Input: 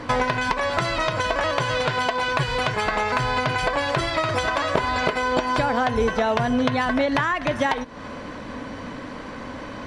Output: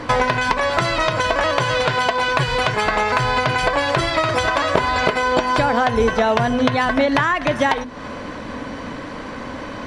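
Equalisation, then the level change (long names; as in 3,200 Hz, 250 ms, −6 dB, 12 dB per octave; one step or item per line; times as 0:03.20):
mains-hum notches 50/100/150/200/250 Hz
+4.5 dB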